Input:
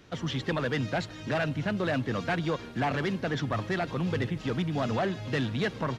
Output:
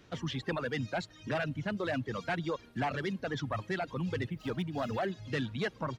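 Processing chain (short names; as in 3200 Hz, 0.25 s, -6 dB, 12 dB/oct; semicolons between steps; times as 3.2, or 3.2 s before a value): 4.31–5.12 median filter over 5 samples; reverb removal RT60 1.6 s; gain -3.5 dB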